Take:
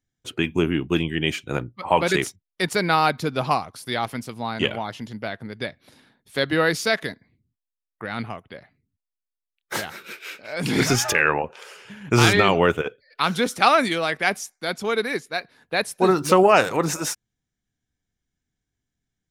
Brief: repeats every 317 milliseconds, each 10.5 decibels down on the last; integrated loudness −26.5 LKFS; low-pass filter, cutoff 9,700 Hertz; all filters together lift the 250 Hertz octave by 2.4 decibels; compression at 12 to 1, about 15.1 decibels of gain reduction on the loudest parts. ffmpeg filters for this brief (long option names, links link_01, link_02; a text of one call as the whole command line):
ffmpeg -i in.wav -af "lowpass=9700,equalizer=frequency=250:width_type=o:gain=3.5,acompressor=threshold=-26dB:ratio=12,aecho=1:1:317|634|951:0.299|0.0896|0.0269,volume=5.5dB" out.wav